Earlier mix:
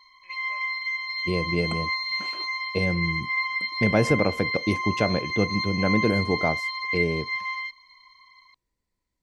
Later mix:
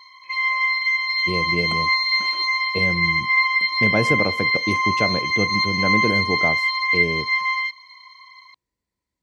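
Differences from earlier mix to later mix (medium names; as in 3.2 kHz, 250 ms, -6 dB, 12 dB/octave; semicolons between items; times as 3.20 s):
background +8.5 dB; master: add high-pass 59 Hz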